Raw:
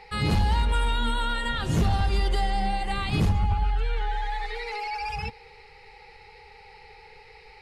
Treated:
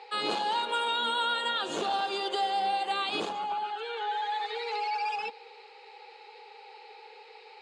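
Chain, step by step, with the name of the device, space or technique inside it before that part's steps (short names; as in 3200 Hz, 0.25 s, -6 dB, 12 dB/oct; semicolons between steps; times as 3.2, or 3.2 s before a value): phone speaker on a table (speaker cabinet 360–7700 Hz, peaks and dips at 2000 Hz -10 dB, 3500 Hz +4 dB, 5500 Hz -9 dB); gain +1.5 dB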